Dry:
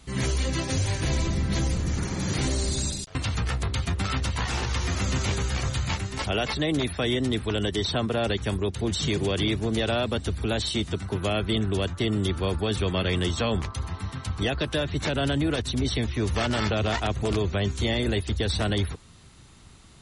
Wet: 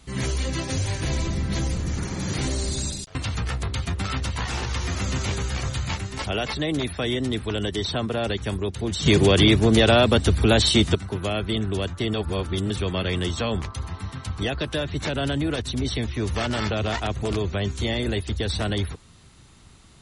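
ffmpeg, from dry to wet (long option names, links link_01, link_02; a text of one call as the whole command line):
ffmpeg -i in.wav -filter_complex "[0:a]asplit=5[link_01][link_02][link_03][link_04][link_05];[link_01]atrim=end=9.062[link_06];[link_02]atrim=start=9.058:end=10.952,asetpts=PTS-STARTPTS,volume=9dB[link_07];[link_03]atrim=start=10.948:end=12.142[link_08];[link_04]atrim=start=12.138:end=12.702,asetpts=PTS-STARTPTS,areverse[link_09];[link_05]atrim=start=12.698[link_10];[link_06][link_07]acrossfade=duration=0.004:curve1=hsin:curve2=hsin[link_11];[link_11][link_08]acrossfade=duration=0.004:curve1=hsin:curve2=hsin[link_12];[link_12][link_09]acrossfade=duration=0.004:curve1=hsin:curve2=hsin[link_13];[link_13][link_10]acrossfade=duration=0.004:curve1=hsin:curve2=hsin" out.wav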